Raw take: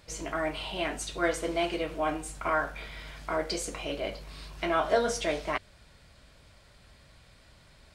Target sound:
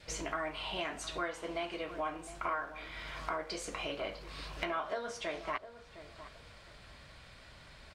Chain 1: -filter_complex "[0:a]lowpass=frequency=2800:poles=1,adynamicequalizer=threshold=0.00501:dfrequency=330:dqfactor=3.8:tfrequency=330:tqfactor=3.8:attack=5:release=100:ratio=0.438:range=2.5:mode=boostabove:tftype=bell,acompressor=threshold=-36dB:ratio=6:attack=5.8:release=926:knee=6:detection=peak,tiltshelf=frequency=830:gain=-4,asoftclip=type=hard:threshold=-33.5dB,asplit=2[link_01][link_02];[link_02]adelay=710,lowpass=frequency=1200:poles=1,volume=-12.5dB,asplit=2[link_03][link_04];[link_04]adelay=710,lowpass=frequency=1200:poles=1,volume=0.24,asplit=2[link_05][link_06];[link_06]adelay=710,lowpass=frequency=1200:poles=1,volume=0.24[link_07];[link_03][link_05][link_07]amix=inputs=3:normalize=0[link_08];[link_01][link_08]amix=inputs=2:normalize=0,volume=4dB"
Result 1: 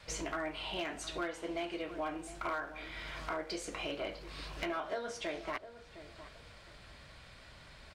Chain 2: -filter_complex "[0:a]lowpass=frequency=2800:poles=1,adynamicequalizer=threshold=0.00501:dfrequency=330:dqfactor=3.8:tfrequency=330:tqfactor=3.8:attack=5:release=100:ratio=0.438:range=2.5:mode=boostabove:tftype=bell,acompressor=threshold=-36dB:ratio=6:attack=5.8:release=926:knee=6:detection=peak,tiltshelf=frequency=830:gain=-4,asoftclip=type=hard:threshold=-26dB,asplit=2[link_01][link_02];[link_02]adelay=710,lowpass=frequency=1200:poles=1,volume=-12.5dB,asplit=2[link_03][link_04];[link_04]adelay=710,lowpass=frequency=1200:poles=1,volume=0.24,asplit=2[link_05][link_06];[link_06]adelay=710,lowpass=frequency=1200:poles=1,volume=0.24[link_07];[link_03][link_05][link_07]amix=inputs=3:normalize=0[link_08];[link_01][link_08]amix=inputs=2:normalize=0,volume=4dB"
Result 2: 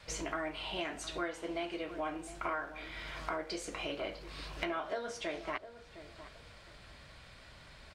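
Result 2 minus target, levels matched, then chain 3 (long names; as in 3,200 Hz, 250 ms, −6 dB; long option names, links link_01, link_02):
250 Hz band +3.5 dB
-filter_complex "[0:a]lowpass=frequency=2800:poles=1,adynamicequalizer=threshold=0.00501:dfrequency=1100:dqfactor=3.8:tfrequency=1100:tqfactor=3.8:attack=5:release=100:ratio=0.438:range=2.5:mode=boostabove:tftype=bell,acompressor=threshold=-36dB:ratio=6:attack=5.8:release=926:knee=6:detection=peak,tiltshelf=frequency=830:gain=-4,asoftclip=type=hard:threshold=-26dB,asplit=2[link_01][link_02];[link_02]adelay=710,lowpass=frequency=1200:poles=1,volume=-12.5dB,asplit=2[link_03][link_04];[link_04]adelay=710,lowpass=frequency=1200:poles=1,volume=0.24,asplit=2[link_05][link_06];[link_06]adelay=710,lowpass=frequency=1200:poles=1,volume=0.24[link_07];[link_03][link_05][link_07]amix=inputs=3:normalize=0[link_08];[link_01][link_08]amix=inputs=2:normalize=0,volume=4dB"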